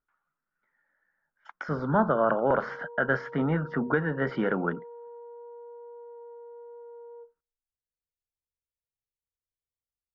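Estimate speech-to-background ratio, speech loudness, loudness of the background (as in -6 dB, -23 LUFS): 18.0 dB, -27.5 LUFS, -45.5 LUFS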